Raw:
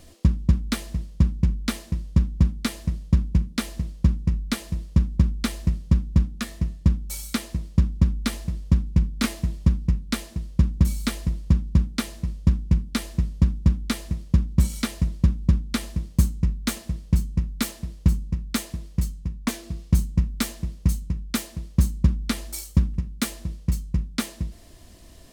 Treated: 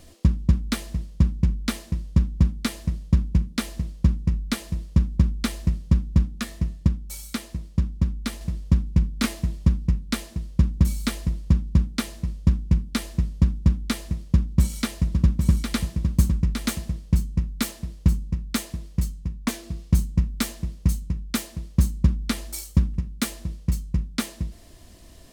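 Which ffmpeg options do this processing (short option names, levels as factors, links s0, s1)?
-filter_complex "[0:a]asettb=1/sr,asplit=3[s0][s1][s2];[s0]atrim=end=14.314[s3];[s1]atrim=start=14.31:end=16.99,asetpts=PTS-STARTPTS,afade=t=in:d=0.004:c=qsin,afade=t=out:st=2.676:d=0.004:c=qsin,aecho=1:1:809:0.531,atrim=end_sample=118188[s4];[s2]atrim=start=16.986[s5];[s3][s4]acrossfade=d=0.004:c1=hsin:c2=qsin[s6];[s6][s5]acrossfade=d=0.004:c1=qsin:c2=hsin,asplit=3[s7][s8][s9];[s7]atrim=end=6.872[s10];[s8]atrim=start=6.868:end=8.412,asetpts=PTS-STARTPTS,volume=0.668[s11];[s9]atrim=start=8.408[s12];[s10][s11]acrossfade=d=0.004:c1=hsin:c2=hsin[s13];[s13][s12]acrossfade=d=0.004:c1=hsin:c2=hsin"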